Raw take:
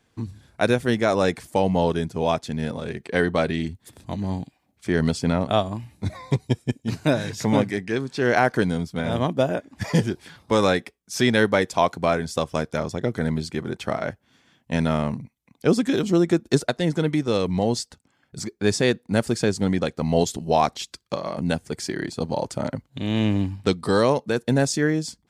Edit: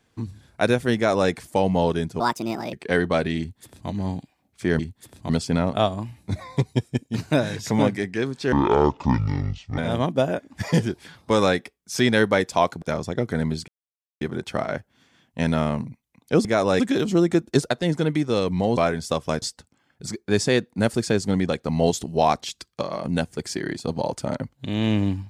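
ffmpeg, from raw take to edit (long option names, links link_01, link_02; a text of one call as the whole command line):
ffmpeg -i in.wav -filter_complex "[0:a]asplit=13[link_01][link_02][link_03][link_04][link_05][link_06][link_07][link_08][link_09][link_10][link_11][link_12][link_13];[link_01]atrim=end=2.204[link_14];[link_02]atrim=start=2.2:end=2.97,asetpts=PTS-STARTPTS,asetrate=63945,aresample=44100[link_15];[link_03]atrim=start=2.966:end=5.032[link_16];[link_04]atrim=start=3.628:end=4.132[link_17];[link_05]atrim=start=5.028:end=8.264[link_18];[link_06]atrim=start=8.26:end=8.99,asetpts=PTS-STARTPTS,asetrate=25578,aresample=44100,atrim=end_sample=55505,asetpts=PTS-STARTPTS[link_19];[link_07]atrim=start=8.986:end=12.032[link_20];[link_08]atrim=start=12.678:end=13.54,asetpts=PTS-STARTPTS,afade=type=out:start_time=0.858:duration=0.004:curve=hsin,apad=pad_dur=0.53[link_21];[link_09]atrim=start=13.54:end=15.782,asetpts=PTS-STARTPTS,afade=type=in:duration=0.004:curve=hsin[link_22];[link_10]atrim=start=0.958:end=1.312[link_23];[link_11]atrim=start=15.778:end=17.752[link_24];[link_12]atrim=start=12.028:end=12.682[link_25];[link_13]atrim=start=17.748[link_26];[link_14][link_15]acrossfade=duration=0.004:curve1=hsin:curve2=hsin[link_27];[link_27][link_16]acrossfade=duration=0.004:curve1=hsin:curve2=hsin[link_28];[link_28][link_17]acrossfade=duration=0.004:curve1=hsin:curve2=hsin[link_29];[link_29][link_18]acrossfade=duration=0.004:curve1=hsin:curve2=hsin[link_30];[link_30][link_19]acrossfade=duration=0.004:curve1=hsin:curve2=hsin[link_31];[link_31][link_20]acrossfade=duration=0.004:curve1=hsin:curve2=hsin[link_32];[link_21][link_22]concat=n=2:v=0:a=1[link_33];[link_32][link_33]acrossfade=duration=0.004:curve1=hsin:curve2=hsin[link_34];[link_34][link_23]acrossfade=duration=0.004:curve1=hsin:curve2=hsin[link_35];[link_35][link_24]acrossfade=duration=0.004:curve1=hsin:curve2=hsin[link_36];[link_36][link_25]acrossfade=duration=0.004:curve1=hsin:curve2=hsin[link_37];[link_37][link_26]acrossfade=duration=0.004:curve1=hsin:curve2=hsin" out.wav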